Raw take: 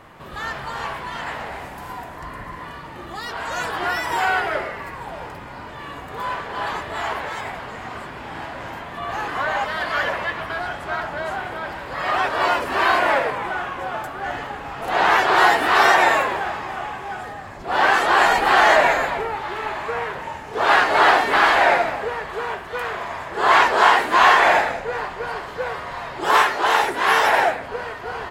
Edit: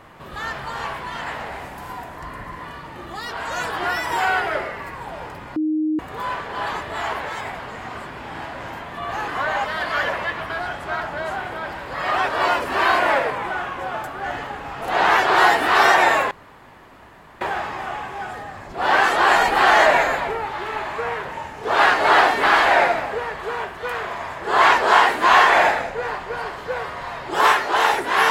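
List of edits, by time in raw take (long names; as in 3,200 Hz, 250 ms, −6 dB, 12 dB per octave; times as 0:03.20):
0:05.56–0:05.99: beep over 310 Hz −18 dBFS
0:16.31: splice in room tone 1.10 s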